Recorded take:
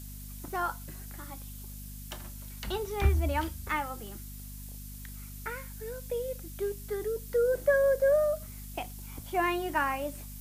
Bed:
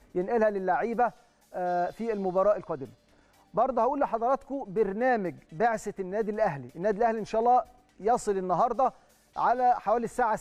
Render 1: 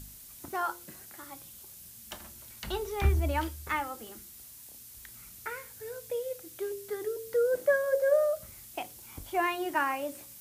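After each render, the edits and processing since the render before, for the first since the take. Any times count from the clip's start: de-hum 50 Hz, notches 11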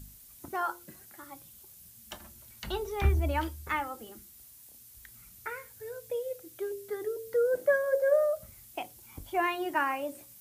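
noise reduction 6 dB, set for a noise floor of -50 dBFS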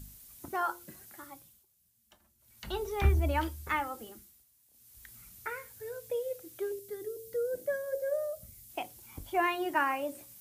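1.21–2.84 s: dip -18.5 dB, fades 0.45 s; 4.04–5.10 s: dip -14 dB, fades 0.41 s; 6.79–8.70 s: peaking EQ 1.1 kHz -13.5 dB 2.2 oct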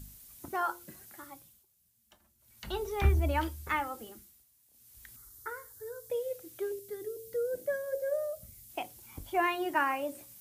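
5.16–6.10 s: static phaser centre 670 Hz, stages 6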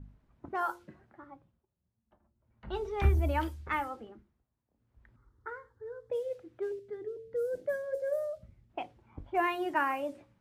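level-controlled noise filter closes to 910 Hz, open at -27.5 dBFS; treble shelf 3.6 kHz -8 dB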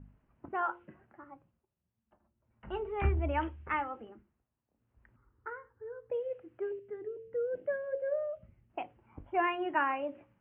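elliptic low-pass 2.9 kHz, stop band 40 dB; bass shelf 92 Hz -5.5 dB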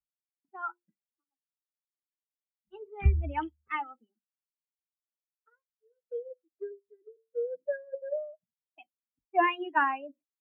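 expander on every frequency bin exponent 2; three bands expanded up and down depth 100%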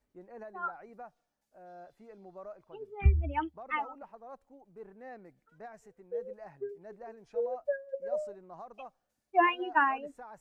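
add bed -22 dB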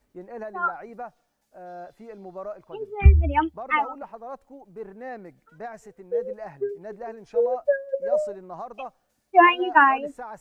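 trim +10.5 dB; peak limiter -3 dBFS, peak gain reduction 1 dB

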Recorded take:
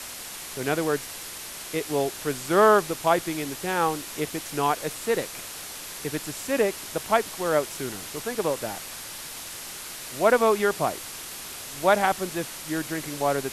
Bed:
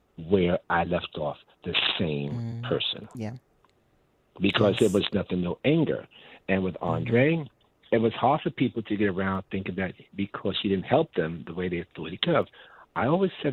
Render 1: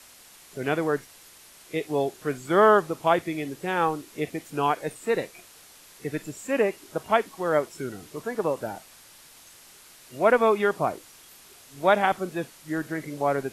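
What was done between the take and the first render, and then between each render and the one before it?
noise print and reduce 13 dB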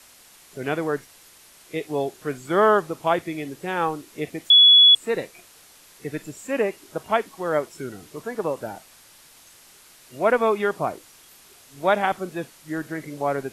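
4.50–4.95 s: bleep 3.39 kHz -8.5 dBFS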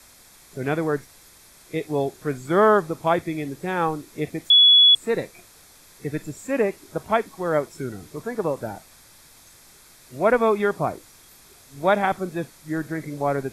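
bass shelf 170 Hz +9.5 dB; band-stop 2.9 kHz, Q 5.8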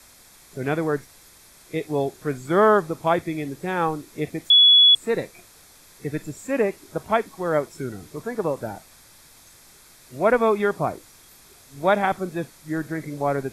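no audible change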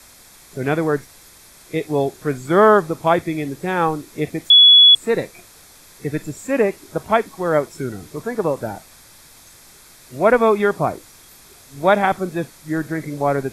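trim +4.5 dB

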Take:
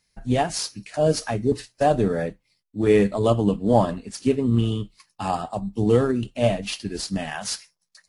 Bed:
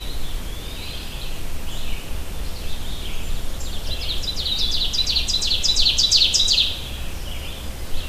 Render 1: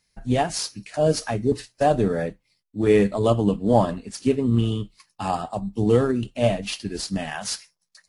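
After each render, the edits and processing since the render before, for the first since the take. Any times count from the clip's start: no audible change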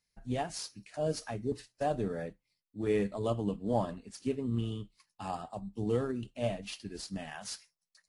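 trim -12.5 dB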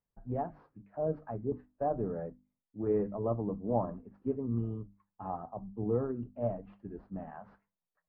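low-pass 1.2 kHz 24 dB/octave; hum notches 50/100/150/200/250/300 Hz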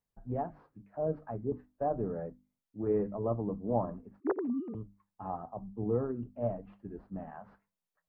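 4.20–4.75 s: formants replaced by sine waves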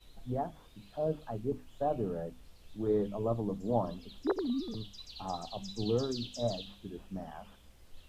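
add bed -28.5 dB

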